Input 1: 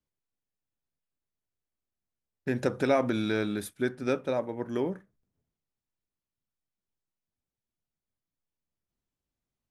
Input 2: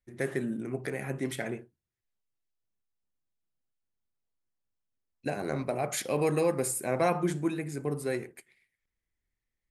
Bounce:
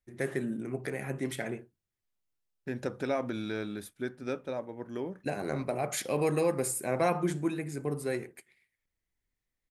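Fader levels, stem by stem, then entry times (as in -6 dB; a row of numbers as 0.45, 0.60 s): -6.5, -1.0 dB; 0.20, 0.00 s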